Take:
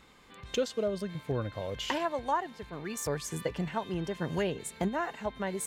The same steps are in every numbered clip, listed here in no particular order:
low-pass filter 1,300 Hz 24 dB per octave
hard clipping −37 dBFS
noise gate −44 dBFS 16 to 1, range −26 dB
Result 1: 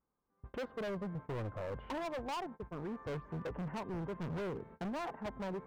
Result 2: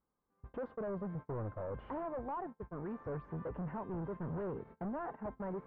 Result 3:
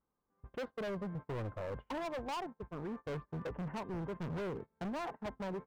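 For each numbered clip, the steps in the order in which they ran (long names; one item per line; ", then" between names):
noise gate, then low-pass filter, then hard clipping
hard clipping, then noise gate, then low-pass filter
low-pass filter, then hard clipping, then noise gate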